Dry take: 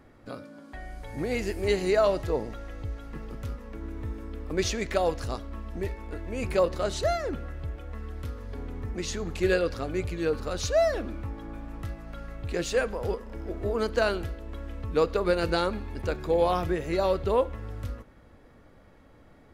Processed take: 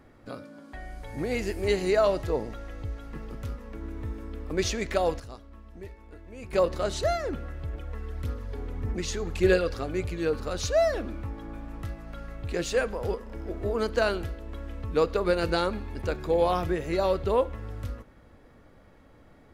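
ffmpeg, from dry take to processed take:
ffmpeg -i in.wav -filter_complex "[0:a]asettb=1/sr,asplit=3[link_01][link_02][link_03];[link_01]atrim=end=7.734[link_04];[link_02]atrim=start=7.73:end=9.82,asetpts=PTS-STARTPTS,afade=type=in:duration=0.004:curve=qsin,afade=type=out:start_time=2.086:duration=0.004:curve=qsin,aphaser=in_gain=1:out_gain=1:delay=2.6:decay=0.35:speed=1.7:type=sinusoidal[link_05];[link_03]atrim=start=9.816[link_06];[link_04][link_05]acrossfade=duration=0.004:curve1=hsin:curve2=qsin[link_07];[link_07][link_06]acrossfade=duration=0.004:curve1=qsin:curve2=hsin,asplit=3[link_08][link_09][link_10];[link_08]atrim=end=5.202[link_11];[link_09]atrim=start=5.198:end=6.532,asetpts=PTS-STARTPTS,volume=-10.5dB[link_12];[link_10]atrim=start=6.528[link_13];[link_11][link_12]acrossfade=duration=0.004:curve1=hsin:curve2=hsin[link_14];[link_14][link_13]acrossfade=duration=0.004:curve1=hsin:curve2=hsin" out.wav

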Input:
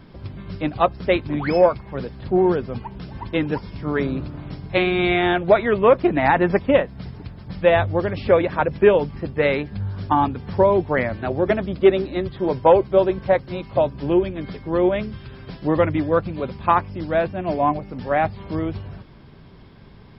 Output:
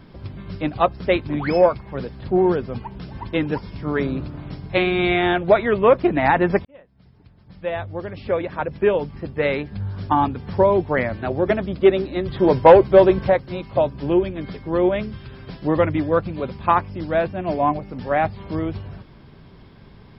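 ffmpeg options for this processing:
ffmpeg -i in.wav -filter_complex "[0:a]asettb=1/sr,asplit=3[link_01][link_02][link_03];[link_01]atrim=end=12.284[link_04];[link_02]atrim=start=12.28:end=13.3,asetpts=PTS-STARTPTS,afade=type=in:duration=0.004:curve=qsin,afade=type=out:start_time=1.016:duration=0.004:curve=qsin,acontrast=61[link_05];[link_03]atrim=start=13.296[link_06];[link_04][link_05]acrossfade=duration=0.004:curve1=hsin:curve2=qsin[link_07];[link_07][link_06]acrossfade=duration=0.004:curve1=qsin:curve2=hsin,asplit=2[link_08][link_09];[link_08]atrim=end=6.65,asetpts=PTS-STARTPTS,afade=type=out:start_time=6.646:duration=0.004:curve=hsin[link_10];[link_09]atrim=start=6.65,asetpts=PTS-STARTPTS,afade=type=in:duration=3.46[link_11];[link_10][link_11]concat=n=2:v=0:a=1" out.wav

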